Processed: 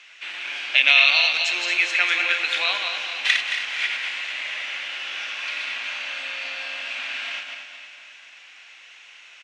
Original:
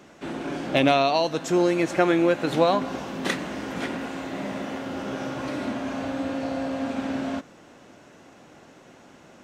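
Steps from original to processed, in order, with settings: backward echo that repeats 111 ms, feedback 59%, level -5 dB; ladder band-pass 2.9 kHz, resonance 50%; feedback delay 247 ms, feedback 58%, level -12 dB; loudness maximiser +20.5 dB; trim -1 dB

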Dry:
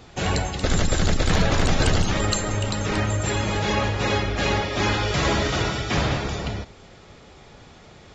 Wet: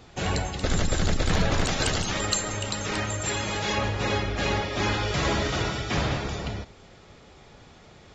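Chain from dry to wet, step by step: 1.64–3.78 s: tilt EQ +1.5 dB/octave; trim -3.5 dB

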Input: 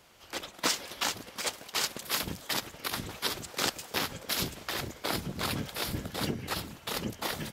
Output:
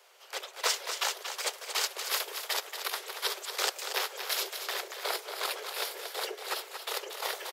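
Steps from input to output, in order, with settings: steep high-pass 380 Hz 96 dB/octave; on a send: delay 232 ms -8 dB

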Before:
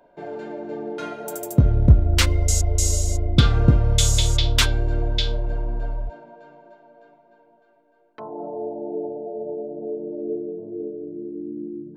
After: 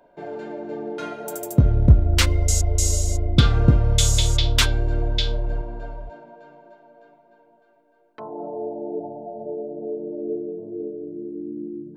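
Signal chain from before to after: 5.61–6.11 s: bass shelf 150 Hz -8.5 dB; 8.99–9.46 s: comb 1.2 ms, depth 64%

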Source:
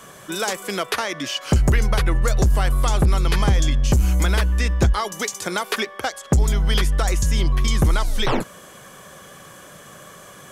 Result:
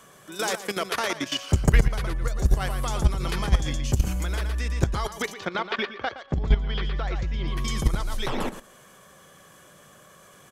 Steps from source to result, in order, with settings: 5.22–7.48 s: low-pass 3.9 kHz 24 dB/octave; feedback delay 117 ms, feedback 16%, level -6.5 dB; level held to a coarse grid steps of 13 dB

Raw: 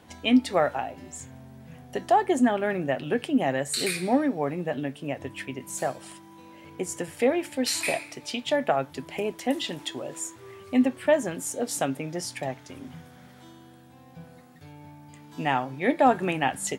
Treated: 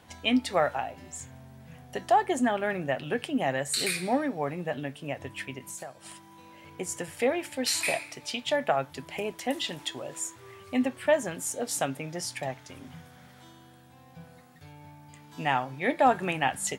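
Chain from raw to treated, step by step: peaking EQ 300 Hz -6 dB 1.6 oct; 5.58–6.05 s: compression 6:1, threshold -38 dBFS, peak gain reduction 13 dB

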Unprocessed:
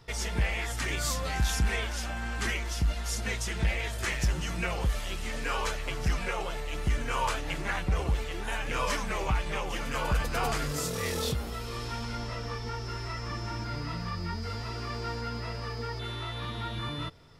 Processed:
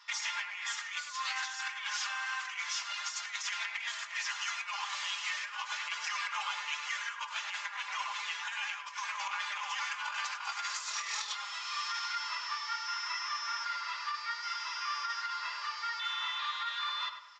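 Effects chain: elliptic high-pass 980 Hz, stop band 80 dB; comb 4.9 ms, depth 90%; compressor with a negative ratio -36 dBFS, ratio -0.5; on a send: tape echo 102 ms, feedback 46%, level -5 dB, low-pass 1.6 kHz; on the sum: resampled via 16 kHz

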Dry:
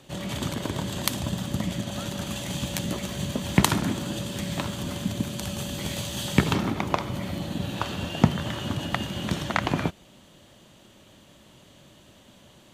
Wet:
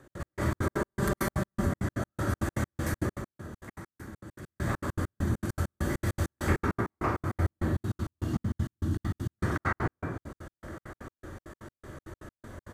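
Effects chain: FFT filter 110 Hz 0 dB, 190 Hz -10 dB, 330 Hz 0 dB, 830 Hz -8 dB, 1.6 kHz +4 dB, 2.8 kHz -21 dB, 8.7 kHz -9 dB; compression 3:1, threshold -40 dBFS, peak gain reduction 17 dB; 0.50–1.55 s: comb 5.1 ms, depth 89%; 2.90–4.52 s: dip -16.5 dB, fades 0.23 s; 7.61–9.29 s: high-order bell 1 kHz -13.5 dB 2.9 oct; delay 1122 ms -17 dB; reverberation RT60 0.95 s, pre-delay 97 ms, DRR -11.5 dB; trance gate "x.x..xx." 199 bpm -60 dB; trim +1 dB

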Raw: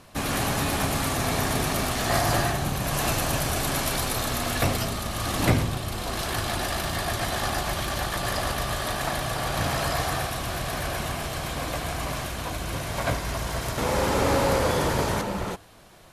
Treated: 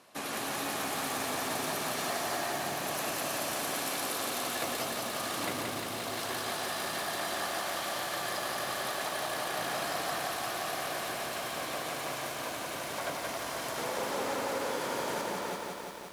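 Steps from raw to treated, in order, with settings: high-pass 290 Hz 12 dB/octave; compression, threshold -26 dBFS, peak gain reduction 7 dB; bit-crushed delay 175 ms, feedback 80%, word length 8-bit, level -3 dB; trim -6.5 dB

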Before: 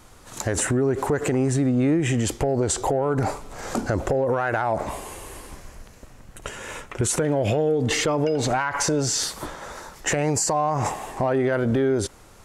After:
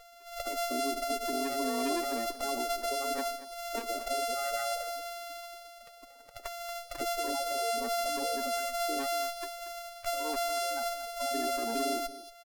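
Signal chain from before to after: sorted samples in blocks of 64 samples; Chebyshev band-pass 240–9000 Hz, order 4; in parallel at -2.5 dB: compression, threshold -34 dBFS, peak gain reduction 16 dB; on the sum: tilt EQ +4 dB/octave; Chebyshev shaper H 5 -17 dB, 8 -24 dB, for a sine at -1 dBFS; spectral gate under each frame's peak -15 dB strong; on a send: delay 232 ms -15 dB; on the sum: sliding maximum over 5 samples; trim -9 dB

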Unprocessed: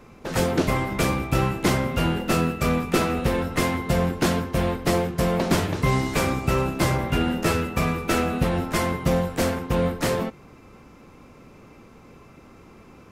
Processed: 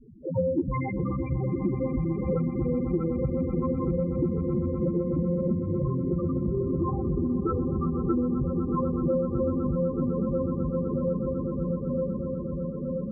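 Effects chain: feedback echo behind a low-pass 940 ms, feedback 71%, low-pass 950 Hz, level -6 dB; loudest bins only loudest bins 4; echo with a slow build-up 125 ms, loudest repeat 8, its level -15.5 dB; compression, threshold -26 dBFS, peak gain reduction 8.5 dB; bass shelf 330 Hz -6.5 dB; trim +7.5 dB

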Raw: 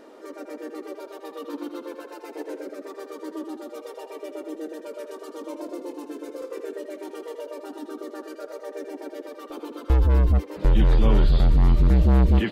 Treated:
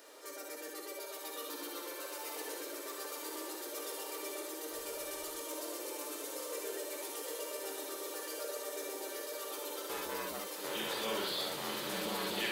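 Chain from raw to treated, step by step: differentiator; reverberation, pre-delay 3 ms, DRR 1.5 dB; saturation -36.5 dBFS, distortion -17 dB; high-pass 340 Hz 12 dB/octave; bass shelf 470 Hz +10 dB; echo that smears into a reverb 1004 ms, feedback 70%, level -4.5 dB; 4.72–5.40 s: added noise pink -72 dBFS; trim +7 dB

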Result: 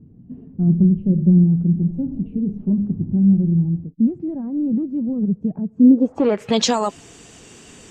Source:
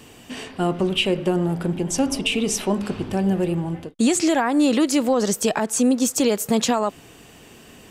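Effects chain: coarse spectral quantiser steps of 15 dB; 0.67–1.44 s: tilt shelf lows +4.5 dB, about 660 Hz; low-pass sweep 180 Hz -> 7.2 kHz, 5.75–6.73 s; trim +1.5 dB

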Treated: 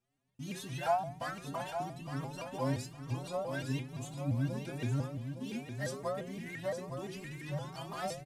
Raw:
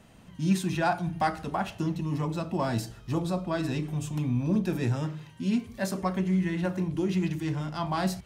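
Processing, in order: CVSD coder 64 kbps; inharmonic resonator 130 Hz, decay 0.41 s, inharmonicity 0.008; gate with hold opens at -53 dBFS; on a send: feedback delay 863 ms, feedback 25%, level -8 dB; on the sum: vibrato with a chosen wave saw up 5.8 Hz, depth 160 cents; trim +4.5 dB

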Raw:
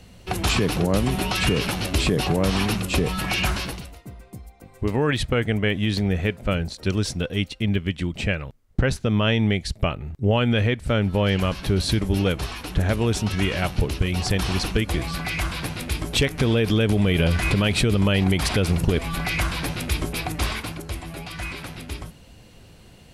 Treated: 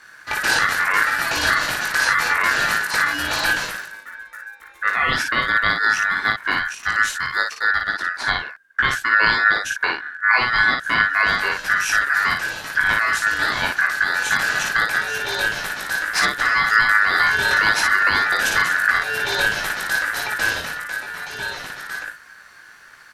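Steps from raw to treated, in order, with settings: early reflections 19 ms -4 dB, 56 ms -3.5 dB; ring modulator 1.6 kHz; trim +2.5 dB

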